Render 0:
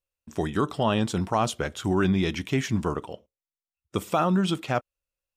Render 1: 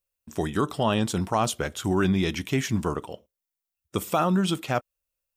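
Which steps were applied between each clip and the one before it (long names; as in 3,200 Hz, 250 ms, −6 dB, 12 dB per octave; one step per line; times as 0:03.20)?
high-shelf EQ 9,200 Hz +11.5 dB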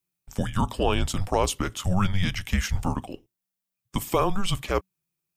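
frequency shifter −190 Hz
level +1 dB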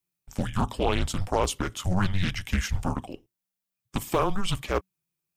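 highs frequency-modulated by the lows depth 0.49 ms
level −1.5 dB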